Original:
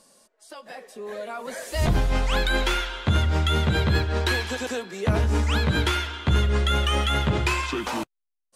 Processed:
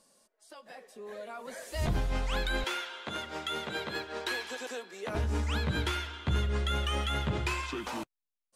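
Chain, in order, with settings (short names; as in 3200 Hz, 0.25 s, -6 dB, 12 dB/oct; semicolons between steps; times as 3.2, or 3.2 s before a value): 2.64–5.15 HPF 340 Hz 12 dB/oct; gain -8.5 dB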